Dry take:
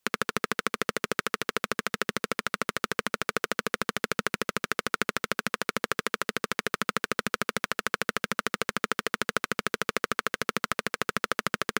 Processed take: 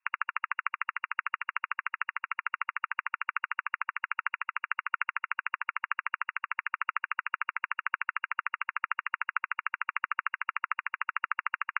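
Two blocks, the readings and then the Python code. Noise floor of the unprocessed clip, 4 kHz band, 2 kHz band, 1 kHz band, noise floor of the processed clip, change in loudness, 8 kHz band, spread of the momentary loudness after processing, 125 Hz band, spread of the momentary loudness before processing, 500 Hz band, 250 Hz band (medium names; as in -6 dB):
-77 dBFS, under -20 dB, -1.0 dB, -1.0 dB, under -85 dBFS, -3.0 dB, under -40 dB, 2 LU, under -40 dB, 1 LU, under -40 dB, under -40 dB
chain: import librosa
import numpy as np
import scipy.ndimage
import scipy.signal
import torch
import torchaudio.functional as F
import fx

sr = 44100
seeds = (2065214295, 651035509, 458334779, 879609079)

y = fx.brickwall_bandpass(x, sr, low_hz=910.0, high_hz=2800.0)
y = F.gain(torch.from_numpy(y), -1.0).numpy()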